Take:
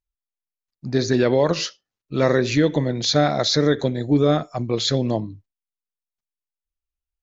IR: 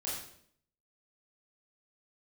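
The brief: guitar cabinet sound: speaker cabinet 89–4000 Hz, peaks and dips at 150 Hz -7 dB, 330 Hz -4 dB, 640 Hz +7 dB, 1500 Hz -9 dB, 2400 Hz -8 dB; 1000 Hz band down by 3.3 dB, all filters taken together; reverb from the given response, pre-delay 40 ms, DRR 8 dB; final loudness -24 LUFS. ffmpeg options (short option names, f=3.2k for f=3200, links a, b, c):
-filter_complex "[0:a]equalizer=f=1k:t=o:g=-8.5,asplit=2[a][b];[1:a]atrim=start_sample=2205,adelay=40[c];[b][c]afir=irnorm=-1:irlink=0,volume=-10.5dB[d];[a][d]amix=inputs=2:normalize=0,highpass=89,equalizer=f=150:t=q:w=4:g=-7,equalizer=f=330:t=q:w=4:g=-4,equalizer=f=640:t=q:w=4:g=7,equalizer=f=1.5k:t=q:w=4:g=-9,equalizer=f=2.4k:t=q:w=4:g=-8,lowpass=f=4k:w=0.5412,lowpass=f=4k:w=1.3066,volume=-2dB"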